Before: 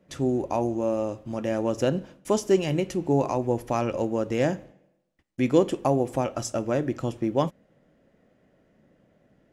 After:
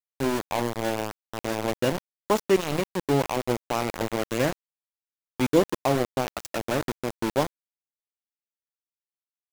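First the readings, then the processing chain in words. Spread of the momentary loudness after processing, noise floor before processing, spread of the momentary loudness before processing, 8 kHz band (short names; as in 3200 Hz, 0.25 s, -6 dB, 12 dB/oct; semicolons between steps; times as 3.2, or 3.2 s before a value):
9 LU, -66 dBFS, 7 LU, +2.0 dB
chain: spectral gain 2.05–2.56, 800–2900 Hz +6 dB; sample gate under -23 dBFS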